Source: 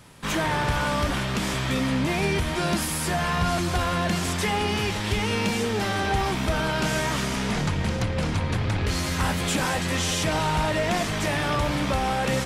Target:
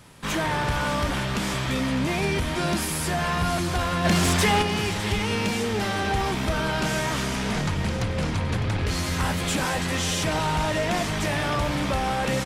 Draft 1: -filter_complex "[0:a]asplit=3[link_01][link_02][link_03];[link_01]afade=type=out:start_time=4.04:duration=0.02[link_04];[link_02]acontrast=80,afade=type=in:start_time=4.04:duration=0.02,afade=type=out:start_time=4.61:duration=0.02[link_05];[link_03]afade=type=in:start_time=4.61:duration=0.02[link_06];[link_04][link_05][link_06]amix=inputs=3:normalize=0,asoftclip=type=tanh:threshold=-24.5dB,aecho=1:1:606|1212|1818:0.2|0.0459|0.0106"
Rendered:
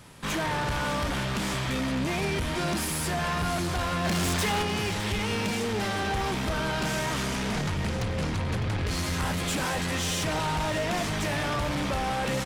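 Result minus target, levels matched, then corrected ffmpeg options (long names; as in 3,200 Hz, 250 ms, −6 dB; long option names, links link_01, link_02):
soft clipping: distortion +11 dB
-filter_complex "[0:a]asplit=3[link_01][link_02][link_03];[link_01]afade=type=out:start_time=4.04:duration=0.02[link_04];[link_02]acontrast=80,afade=type=in:start_time=4.04:duration=0.02,afade=type=out:start_time=4.61:duration=0.02[link_05];[link_03]afade=type=in:start_time=4.61:duration=0.02[link_06];[link_04][link_05][link_06]amix=inputs=3:normalize=0,asoftclip=type=tanh:threshold=-14dB,aecho=1:1:606|1212|1818:0.2|0.0459|0.0106"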